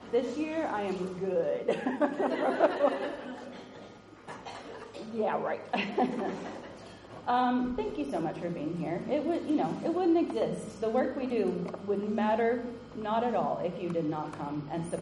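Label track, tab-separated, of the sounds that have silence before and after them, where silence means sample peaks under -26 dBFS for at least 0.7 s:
5.190000	6.300000	sound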